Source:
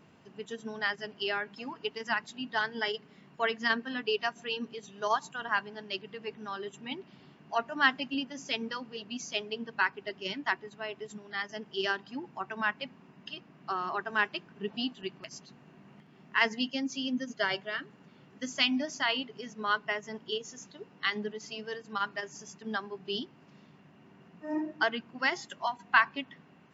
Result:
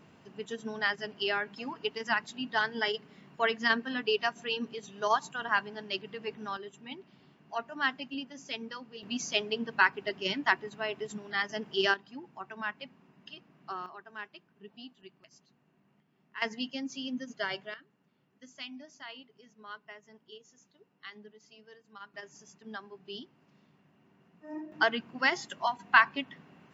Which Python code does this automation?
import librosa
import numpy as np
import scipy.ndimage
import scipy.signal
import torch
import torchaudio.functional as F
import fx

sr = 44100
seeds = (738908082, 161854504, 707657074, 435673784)

y = fx.gain(x, sr, db=fx.steps((0.0, 1.5), (6.57, -5.0), (9.03, 4.0), (11.94, -5.5), (13.86, -14.5), (16.42, -4.0), (17.74, -16.0), (22.14, -8.0), (24.72, 2.0)))